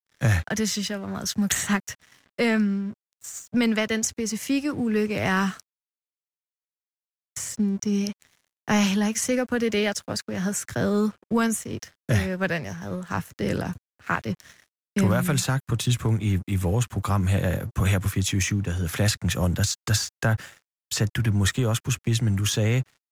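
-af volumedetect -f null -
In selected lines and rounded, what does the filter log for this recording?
mean_volume: -25.4 dB
max_volume: -9.1 dB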